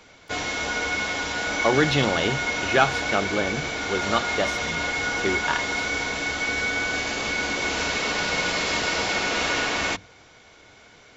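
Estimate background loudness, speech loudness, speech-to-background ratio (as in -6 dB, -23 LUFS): -25.0 LUFS, -26.0 LUFS, -1.0 dB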